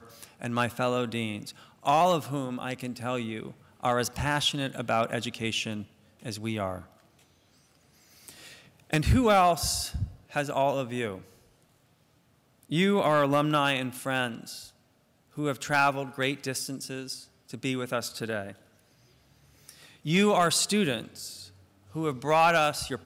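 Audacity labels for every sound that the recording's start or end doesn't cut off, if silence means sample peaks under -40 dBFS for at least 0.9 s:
8.280000	11.220000	sound
12.630000	18.520000	sound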